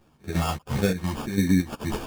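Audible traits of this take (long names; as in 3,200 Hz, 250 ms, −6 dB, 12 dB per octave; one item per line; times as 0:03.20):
phaser sweep stages 12, 1.6 Hz, lowest notch 420–1,700 Hz
aliases and images of a low sample rate 2,000 Hz, jitter 0%
chopped level 2.9 Hz, depth 60%, duty 65%
a shimmering, thickened sound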